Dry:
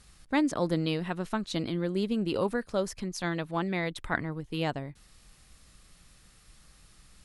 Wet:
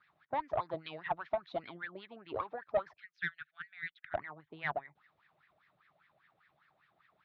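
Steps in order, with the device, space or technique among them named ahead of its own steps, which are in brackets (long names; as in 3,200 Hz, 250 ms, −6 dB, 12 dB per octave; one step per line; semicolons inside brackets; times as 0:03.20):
0:00.60–0:01.77: high-shelf EQ 4,900 Hz +8 dB
0:02.97–0:04.14: elliptic high-pass filter 1,500 Hz, stop band 40 dB
harmonic and percussive parts rebalanced harmonic −12 dB
wah-wah guitar rig (LFO wah 5 Hz 600–1,900 Hz, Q 7.6; tube saturation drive 33 dB, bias 0.3; loudspeaker in its box 100–4,500 Hz, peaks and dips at 150 Hz +6 dB, 240 Hz −6 dB, 510 Hz −7 dB, 2,300 Hz +4 dB, 3,600 Hz +8 dB)
spectral tilt −2.5 dB per octave
level +12 dB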